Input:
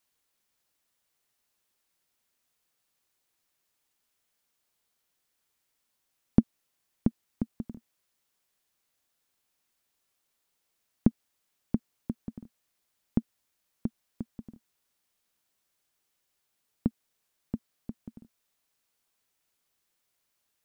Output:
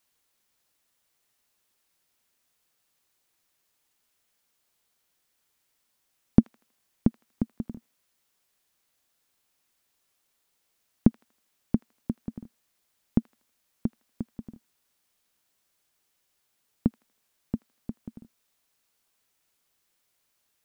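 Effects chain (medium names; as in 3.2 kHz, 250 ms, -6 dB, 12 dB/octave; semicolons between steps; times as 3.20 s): feedback echo behind a high-pass 80 ms, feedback 41%, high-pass 1.5 kHz, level -13 dB; trim +3.5 dB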